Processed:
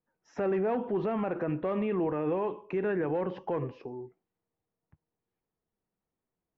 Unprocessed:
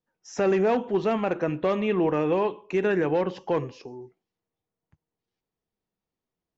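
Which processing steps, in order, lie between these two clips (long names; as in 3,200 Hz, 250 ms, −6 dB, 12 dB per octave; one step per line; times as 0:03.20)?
low-pass filter 1,900 Hz 12 dB per octave
brickwall limiter −22.5 dBFS, peak gain reduction 8 dB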